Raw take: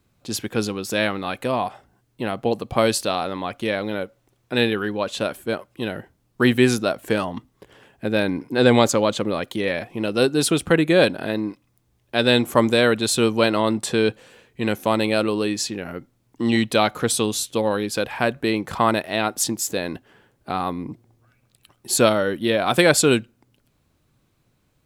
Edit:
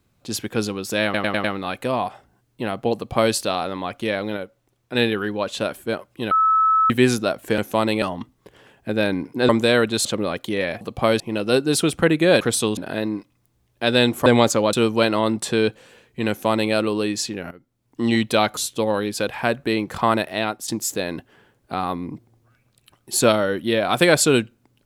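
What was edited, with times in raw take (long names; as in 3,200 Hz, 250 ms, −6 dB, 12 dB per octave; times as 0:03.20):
0:01.04: stutter 0.10 s, 5 plays
0:02.55–0:02.94: duplicate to 0:09.88
0:03.97–0:04.55: clip gain −3.5 dB
0:05.91–0:06.50: beep over 1,300 Hz −13.5 dBFS
0:08.65–0:09.12: swap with 0:12.58–0:13.14
0:14.70–0:15.14: duplicate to 0:07.18
0:15.92–0:16.43: fade in quadratic, from −13.5 dB
0:16.98–0:17.34: move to 0:11.09
0:19.06–0:19.45: fade out equal-power, to −13 dB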